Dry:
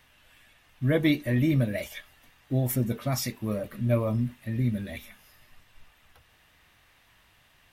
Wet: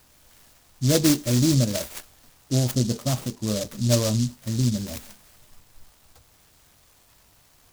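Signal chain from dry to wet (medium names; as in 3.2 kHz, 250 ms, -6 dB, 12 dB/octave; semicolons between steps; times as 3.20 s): 2.71–3.47 s: median filter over 15 samples; delay time shaken by noise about 5.3 kHz, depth 0.16 ms; trim +4 dB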